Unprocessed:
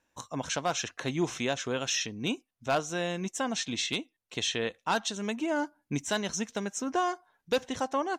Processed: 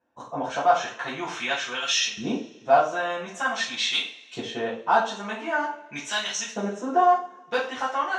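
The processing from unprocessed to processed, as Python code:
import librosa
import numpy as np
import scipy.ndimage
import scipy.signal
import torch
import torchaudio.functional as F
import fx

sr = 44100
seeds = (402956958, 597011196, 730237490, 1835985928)

y = fx.filter_lfo_bandpass(x, sr, shape='saw_up', hz=0.46, low_hz=410.0, high_hz=3800.0, q=0.96)
y = fx.rev_double_slope(y, sr, seeds[0], early_s=0.39, late_s=1.7, knee_db=-22, drr_db=-9.5)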